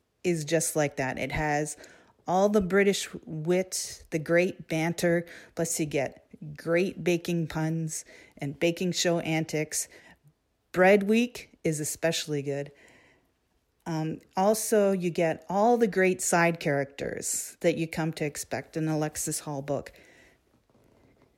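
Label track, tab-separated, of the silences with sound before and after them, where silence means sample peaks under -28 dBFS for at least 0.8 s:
9.830000	10.740000	silence
12.620000	13.870000	silence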